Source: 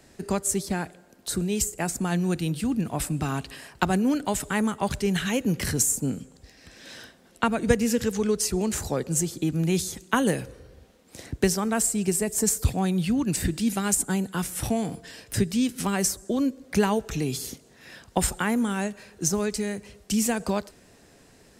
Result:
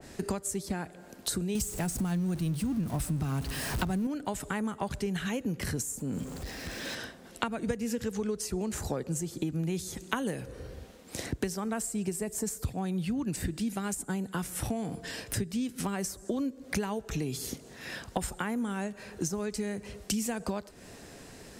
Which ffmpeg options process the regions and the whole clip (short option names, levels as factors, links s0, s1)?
-filter_complex "[0:a]asettb=1/sr,asplit=3[s0][s1][s2];[s0]atrim=end=1.554[s3];[s1]atrim=start=1.55:end=4.07,asetpts=PTS-STARTPTS,afade=t=in:d=0.004:c=qsin,afade=t=out:st=2.516:d=0.004:c=qsin,aeval=exprs='val(0)+0.5*0.0282*sgn(val(0))':c=same,bass=f=250:g=9,treble=f=4000:g=6,bandreject=f=7200:w=17[s4];[s2]atrim=start=4.066[s5];[s3][s4]acrossfade=d=0.004:c1=hsin:c2=qsin[s6];[s6][s5]acrossfade=d=0.004:c1=qsin:c2=hsin,asettb=1/sr,asplit=3[s7][s8][s9];[s7]atrim=end=5.984[s10];[s8]atrim=start=5.98:end=6.95,asetpts=PTS-STARTPTS,afade=t=in:d=0.004:c=qsin,afade=t=out:st=0.966:d=0.004:c=qsin,aeval=exprs='val(0)+0.5*0.00708*sgn(val(0))':c=same,acompressor=threshold=0.0355:ratio=5:attack=3.2:release=140:knee=1:detection=peak[s11];[s9]atrim=start=6.946[s12];[s10][s11]acrossfade=d=0.004:c1=hsin:c2=qsin[s13];[s13][s12]acrossfade=d=0.004:c1=qsin:c2=hsin,acompressor=threshold=0.0158:ratio=6,adynamicequalizer=threshold=0.00141:dfrequency=2000:dqfactor=0.7:tfrequency=2000:tqfactor=0.7:attack=5:release=100:ratio=0.375:range=2:mode=cutabove:tftype=highshelf,volume=2"